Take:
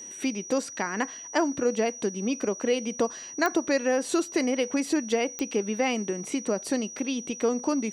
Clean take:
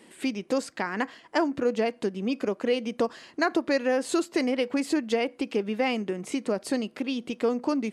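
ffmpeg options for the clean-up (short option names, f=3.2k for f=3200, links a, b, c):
-af "adeclick=t=4,bandreject=f=5.8k:w=30"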